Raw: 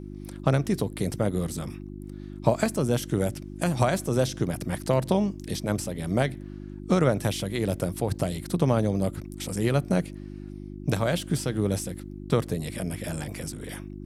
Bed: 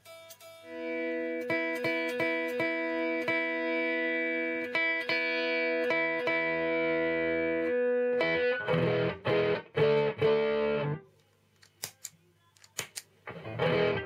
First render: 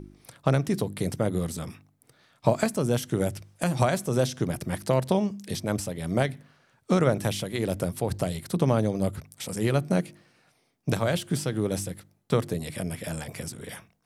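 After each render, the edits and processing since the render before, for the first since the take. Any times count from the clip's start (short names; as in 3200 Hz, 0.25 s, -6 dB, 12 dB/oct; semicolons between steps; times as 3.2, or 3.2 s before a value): de-hum 50 Hz, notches 7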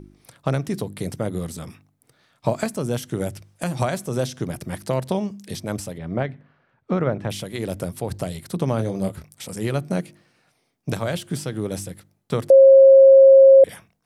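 5.98–7.3 LPF 2200 Hz; 8.76–9.34 doubler 26 ms -7 dB; 12.5–13.64 bleep 539 Hz -6 dBFS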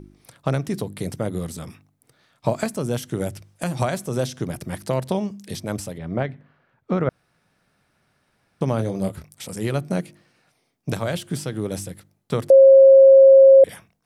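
7.09–8.61 room tone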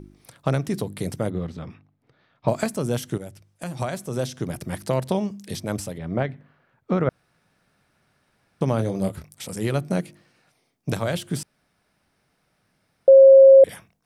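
1.3–2.48 air absorption 250 m; 3.18–4.72 fade in, from -12.5 dB; 11.43–13.08 room tone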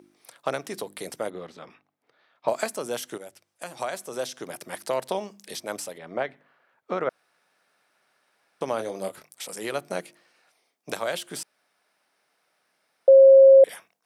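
HPF 490 Hz 12 dB/oct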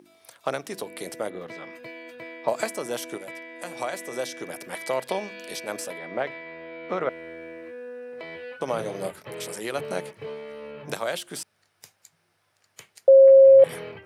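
add bed -10.5 dB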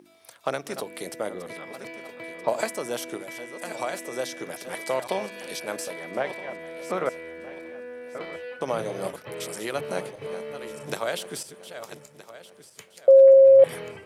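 regenerating reverse delay 0.635 s, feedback 51%, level -11 dB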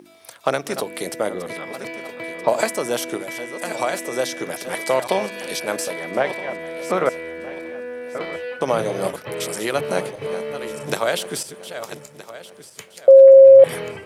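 gain +7.5 dB; limiter -3 dBFS, peak gain reduction 3 dB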